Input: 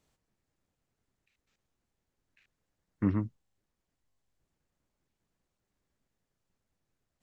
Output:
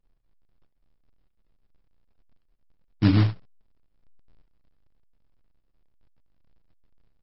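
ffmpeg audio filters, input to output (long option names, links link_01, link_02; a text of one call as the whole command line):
ffmpeg -i in.wav -af "aemphasis=mode=reproduction:type=riaa,bandreject=frequency=60:width_type=h:width=6,bandreject=frequency=120:width_type=h:width=6,bandreject=frequency=180:width_type=h:width=6,anlmdn=0.0398,highshelf=frequency=2500:gain=-6.5,aecho=1:1:6.7:0.38,aecho=1:1:28|45|74:0.422|0.178|0.141,aresample=11025,acrusher=bits=3:mode=log:mix=0:aa=0.000001,aresample=44100" -ar 48000 -c:a libmp3lame -b:a 32k out.mp3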